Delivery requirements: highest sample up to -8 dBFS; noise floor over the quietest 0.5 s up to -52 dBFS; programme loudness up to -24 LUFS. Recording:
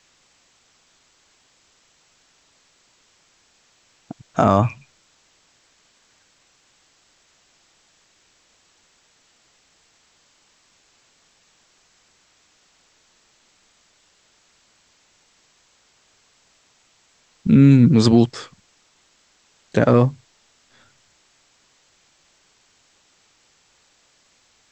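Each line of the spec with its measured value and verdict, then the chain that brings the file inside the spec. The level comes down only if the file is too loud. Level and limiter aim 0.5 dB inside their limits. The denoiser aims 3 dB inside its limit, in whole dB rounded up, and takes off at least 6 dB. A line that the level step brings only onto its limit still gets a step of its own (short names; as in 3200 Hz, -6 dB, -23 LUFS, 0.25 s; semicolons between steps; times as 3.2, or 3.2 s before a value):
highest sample -3.0 dBFS: fail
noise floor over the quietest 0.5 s -60 dBFS: OK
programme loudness -16.5 LUFS: fail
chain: gain -8 dB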